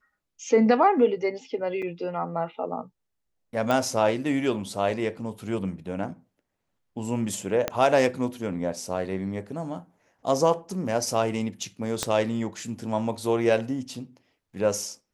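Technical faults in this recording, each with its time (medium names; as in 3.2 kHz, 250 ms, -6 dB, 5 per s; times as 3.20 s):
1.82–1.83 s: dropout 5.3 ms
3.71 s: pop -13 dBFS
7.68 s: pop -10 dBFS
12.03 s: pop -10 dBFS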